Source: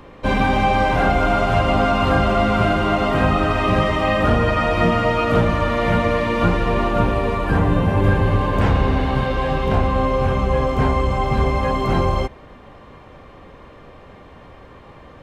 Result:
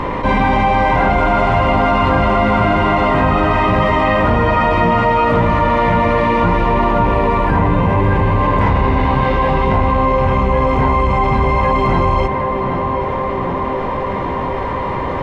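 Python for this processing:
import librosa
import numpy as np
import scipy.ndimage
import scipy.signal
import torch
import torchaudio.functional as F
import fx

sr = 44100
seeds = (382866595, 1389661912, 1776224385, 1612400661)

y = fx.rattle_buzz(x, sr, strikes_db=-26.0, level_db=-28.0)
y = fx.lowpass(y, sr, hz=2900.0, slope=6)
y = fx.small_body(y, sr, hz=(970.0, 2000.0), ring_ms=55, db=16)
y = fx.echo_tape(y, sr, ms=770, feedback_pct=73, wet_db=-13.5, lp_hz=1500.0, drive_db=8.0, wow_cents=10)
y = fx.env_flatten(y, sr, amount_pct=70)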